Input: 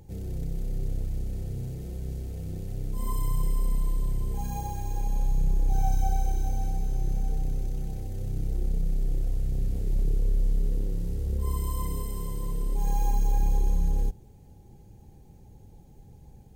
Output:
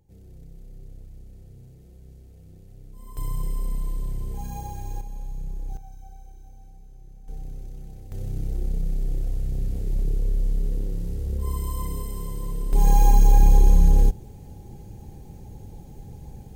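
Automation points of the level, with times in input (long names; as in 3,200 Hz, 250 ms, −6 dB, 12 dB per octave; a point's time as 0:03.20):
−13 dB
from 0:03.17 −1.5 dB
from 0:05.01 −8.5 dB
from 0:05.77 −19 dB
from 0:07.28 −7.5 dB
from 0:08.12 +1 dB
from 0:12.73 +9.5 dB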